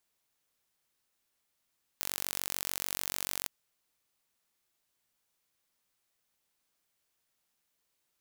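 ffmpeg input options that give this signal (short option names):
-f lavfi -i "aevalsrc='0.447*eq(mod(n,942),0)':d=1.47:s=44100"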